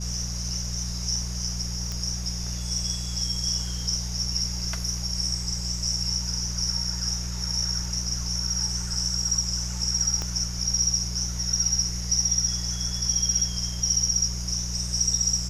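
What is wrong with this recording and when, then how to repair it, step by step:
mains hum 60 Hz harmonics 3 −32 dBFS
0:01.92: click −18 dBFS
0:10.22: click −16 dBFS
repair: click removal
hum removal 60 Hz, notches 3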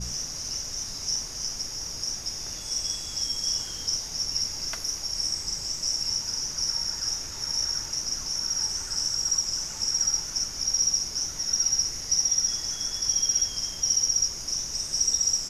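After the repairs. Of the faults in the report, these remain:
0:10.22: click

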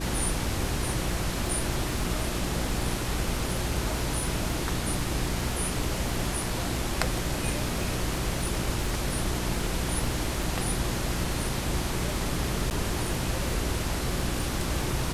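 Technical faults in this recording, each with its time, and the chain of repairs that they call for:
surface crackle 57 per second −34 dBFS
mains hum 60 Hz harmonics 6 −34 dBFS
0:12.70–0:12.71: drop-out 9.4 ms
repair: click removal
hum removal 60 Hz, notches 6
repair the gap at 0:12.70, 9.4 ms

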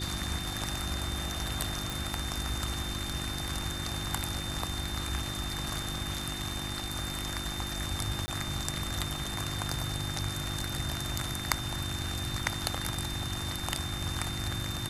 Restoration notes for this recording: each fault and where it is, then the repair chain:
surface crackle 20 per second −41 dBFS
mains hum 50 Hz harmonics 7 −40 dBFS
whistle 3,600 Hz −39 dBFS
0:01.90: click
0:08.26–0:08.28: drop-out 20 ms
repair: click removal
hum removal 50 Hz, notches 7
notch filter 3,600 Hz, Q 30
repair the gap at 0:08.26, 20 ms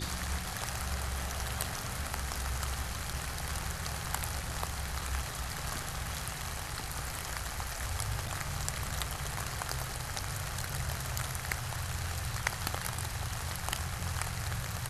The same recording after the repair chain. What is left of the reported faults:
none of them is left

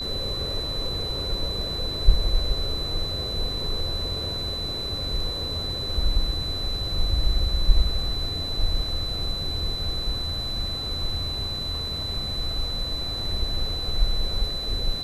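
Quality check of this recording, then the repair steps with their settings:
whistle 4,000 Hz −29 dBFS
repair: notch filter 4,000 Hz, Q 30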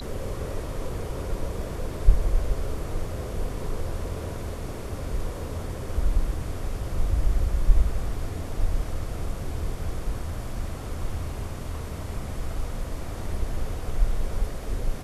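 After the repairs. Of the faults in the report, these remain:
none of them is left

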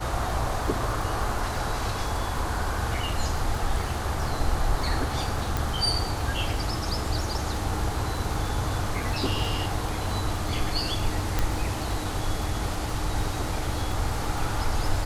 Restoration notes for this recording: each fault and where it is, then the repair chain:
surface crackle 41 per second −32 dBFS
0:05.57: click
0:11.39: click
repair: click removal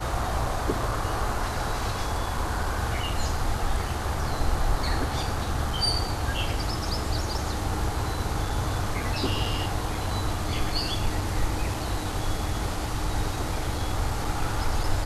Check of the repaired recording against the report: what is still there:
none of them is left

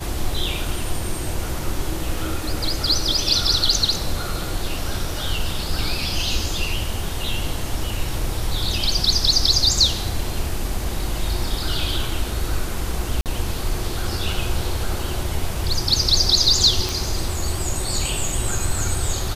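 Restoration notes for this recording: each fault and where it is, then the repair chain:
0:13.21–0:13.26: drop-out 48 ms
0:16.89: click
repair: click removal
repair the gap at 0:13.21, 48 ms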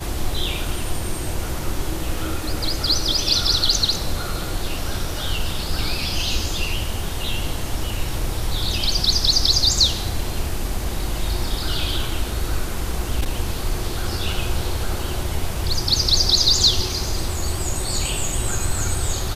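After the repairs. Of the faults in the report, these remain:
none of them is left

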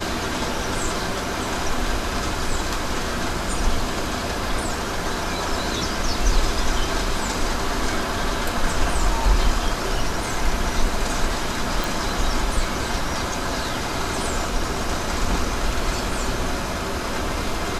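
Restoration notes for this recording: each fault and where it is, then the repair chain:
0:11.84: click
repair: click removal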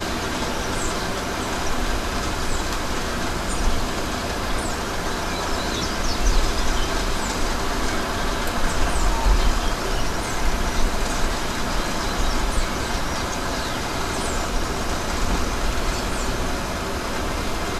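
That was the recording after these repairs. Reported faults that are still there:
none of them is left

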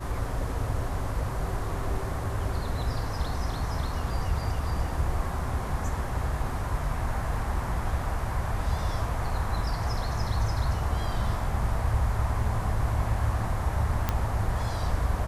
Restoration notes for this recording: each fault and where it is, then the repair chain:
0:14.09: click −11 dBFS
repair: click removal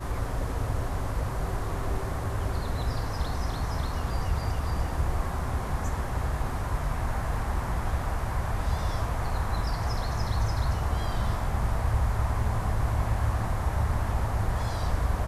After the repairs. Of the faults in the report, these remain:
none of them is left

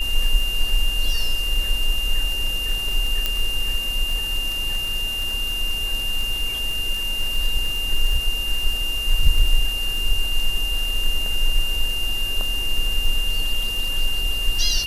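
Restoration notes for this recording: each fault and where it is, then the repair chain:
surface crackle 44 per second −25 dBFS
whistle 2,800 Hz −24 dBFS
0:03.26: click −6 dBFS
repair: click removal
notch filter 2,800 Hz, Q 30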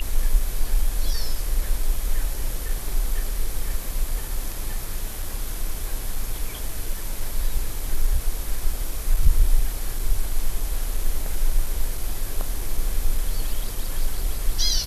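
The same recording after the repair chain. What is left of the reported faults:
0:03.26: click

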